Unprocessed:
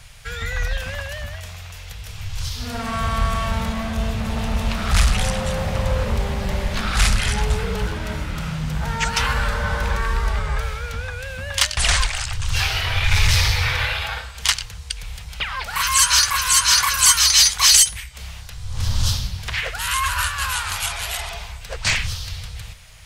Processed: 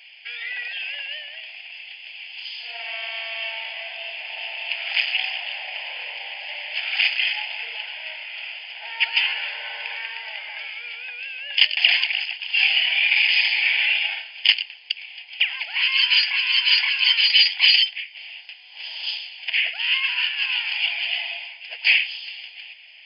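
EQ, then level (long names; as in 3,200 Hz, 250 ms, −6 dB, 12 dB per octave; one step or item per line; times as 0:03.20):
linear-phase brick-wall band-pass 470–5,100 Hz
high shelf with overshoot 2,000 Hz +12.5 dB, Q 3
phaser with its sweep stopped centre 790 Hz, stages 8
−5.5 dB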